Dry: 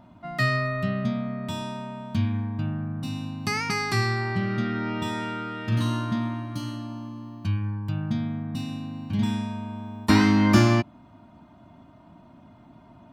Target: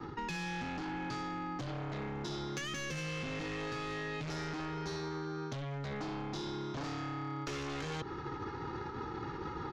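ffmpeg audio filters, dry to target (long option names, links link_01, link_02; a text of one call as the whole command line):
ffmpeg -i in.wav -filter_complex "[0:a]alimiter=limit=-16.5dB:level=0:latency=1:release=296,aresample=11025,asoftclip=type=hard:threshold=-30dB,aresample=44100,lowshelf=frequency=290:gain=5.5,agate=range=-33dB:threshold=-43dB:ratio=3:detection=peak,aecho=1:1:3.1:0.47,aeval=exprs='0.0841*sin(PI/2*1.41*val(0)/0.0841)':channel_layout=same,areverse,acompressor=threshold=-42dB:ratio=6,areverse,bandreject=frequency=670:width=16,asetrate=59535,aresample=44100,acrossover=split=160|580[link_01][link_02][link_03];[link_01]acompressor=threshold=-58dB:ratio=4[link_04];[link_02]acompressor=threshold=-58dB:ratio=4[link_05];[link_03]acompressor=threshold=-52dB:ratio=4[link_06];[link_04][link_05][link_06]amix=inputs=3:normalize=0,volume=11.5dB" out.wav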